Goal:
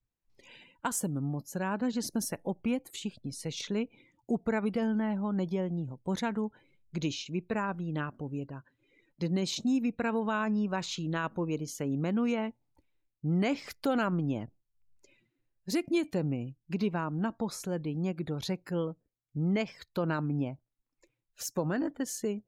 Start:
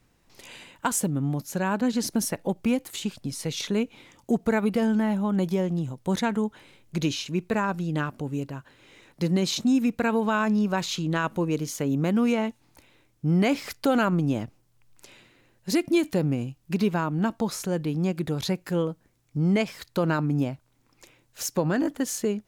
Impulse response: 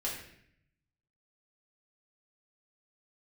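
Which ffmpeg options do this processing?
-af "afftdn=nr=22:nf=-47,volume=-6.5dB"

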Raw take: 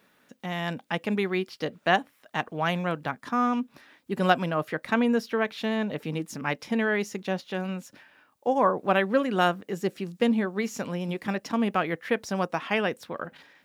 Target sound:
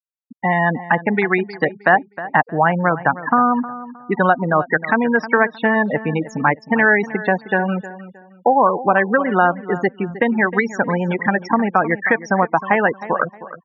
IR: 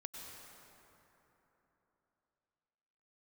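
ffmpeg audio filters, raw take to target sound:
-filter_complex "[0:a]equalizer=f=850:w=2.3:g=7.5,acrossover=split=650|4100[a][b][c];[a]acompressor=threshold=-32dB:ratio=4[d];[b]acompressor=threshold=-35dB:ratio=4[e];[c]acompressor=threshold=-57dB:ratio=4[f];[d][e][f]amix=inputs=3:normalize=0,crystalizer=i=4.5:c=0,afftfilt=real='re*gte(hypot(re,im),0.0447)':imag='im*gte(hypot(re,im),0.0447)':win_size=1024:overlap=0.75,highshelf=f=2.3k:t=q:w=3:g=-9,asplit=2[g][h];[h]adelay=312,lowpass=f=2.4k:p=1,volume=-15dB,asplit=2[i][j];[j]adelay=312,lowpass=f=2.4k:p=1,volume=0.29,asplit=2[k][l];[l]adelay=312,lowpass=f=2.4k:p=1,volume=0.29[m];[g][i][k][m]amix=inputs=4:normalize=0,alimiter=level_in=14.5dB:limit=-1dB:release=50:level=0:latency=1,volume=-1dB"

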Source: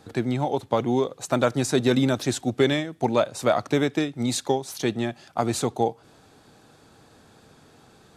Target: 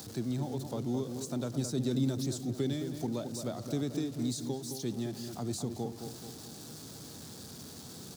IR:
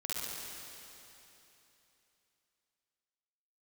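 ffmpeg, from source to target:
-filter_complex "[0:a]aeval=exprs='val(0)+0.5*0.0237*sgn(val(0))':c=same,highpass=90,highshelf=f=3.4k:t=q:w=1.5:g=10,acrossover=split=320[a][b];[b]acompressor=threshold=-46dB:ratio=2[c];[a][c]amix=inputs=2:normalize=0,asplit=2[d][e];[e]adelay=216,lowpass=f=1.6k:p=1,volume=-7dB,asplit=2[f][g];[g]adelay=216,lowpass=f=1.6k:p=1,volume=0.52,asplit=2[h][i];[i]adelay=216,lowpass=f=1.6k:p=1,volume=0.52,asplit=2[j][k];[k]adelay=216,lowpass=f=1.6k:p=1,volume=0.52,asplit=2[l][m];[m]adelay=216,lowpass=f=1.6k:p=1,volume=0.52,asplit=2[n][o];[o]adelay=216,lowpass=f=1.6k:p=1,volume=0.52[p];[d][f][h][j][l][n][p]amix=inputs=7:normalize=0,volume=-7.5dB"

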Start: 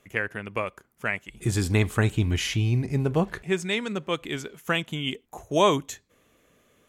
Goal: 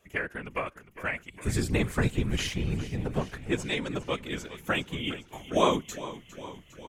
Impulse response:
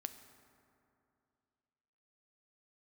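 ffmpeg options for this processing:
-filter_complex "[0:a]asettb=1/sr,asplit=3[a][b][c];[a]atrim=end=2.474[d];[b]atrim=start=2.47:end=3.42,asetpts=PTS-STARTPTS,afade=t=in:d=0.004:c=qsin,afade=t=out:st=0.946:d=0.004:c=qsin,aeval=exprs='if(lt(val(0),0),0.447*val(0),val(0))':c=same[e];[c]atrim=start=3.416[f];[d][e]acrossfade=d=0.004:c1=hsin:c2=qsin[g];[g][f]acrossfade=d=0.004:c1=qsin:c2=hsin,afftfilt=real='hypot(re,im)*cos(2*PI*random(0))':imag='hypot(re,im)*sin(2*PI*random(1))':win_size=512:overlap=0.75,asplit=8[h][i][j][k][l][m][n][o];[i]adelay=406,afreqshift=-38,volume=-15dB[p];[j]adelay=812,afreqshift=-76,volume=-18.7dB[q];[k]adelay=1218,afreqshift=-114,volume=-22.5dB[r];[l]adelay=1624,afreqshift=-152,volume=-26.2dB[s];[m]adelay=2030,afreqshift=-190,volume=-30dB[t];[n]adelay=2436,afreqshift=-228,volume=-33.7dB[u];[o]adelay=2842,afreqshift=-266,volume=-37.5dB[v];[h][p][q][r][s][t][u][v]amix=inputs=8:normalize=0,volume=2.5dB"

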